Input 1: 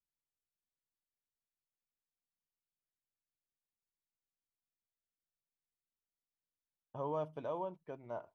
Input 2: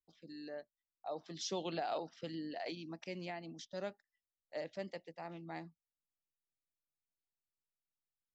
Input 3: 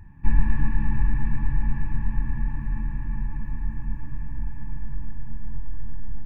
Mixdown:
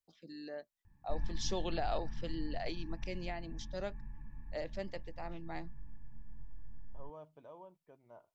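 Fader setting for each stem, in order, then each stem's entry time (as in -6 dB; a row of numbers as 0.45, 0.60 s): -13.5, +1.5, -19.0 dB; 0.00, 0.00, 0.85 s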